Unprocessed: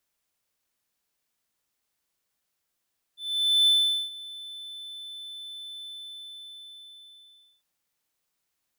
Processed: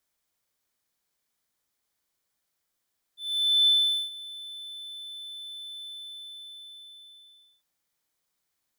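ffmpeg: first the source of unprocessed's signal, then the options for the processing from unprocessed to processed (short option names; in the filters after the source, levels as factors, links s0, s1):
-f lavfi -i "aevalsrc='0.188*(1-4*abs(mod(3520*t+0.25,1)-0.5))':d=4.46:s=44100,afade=t=in:d=0.498,afade=t=out:st=0.498:d=0.429:silence=0.0891,afade=t=out:st=2.68:d=1.78"
-filter_complex "[0:a]acrossover=split=4200|5600[s0][s1][s2];[s0]bandreject=f=2700:w=11[s3];[s2]alimiter=level_in=5.62:limit=0.0631:level=0:latency=1,volume=0.178[s4];[s3][s1][s4]amix=inputs=3:normalize=0"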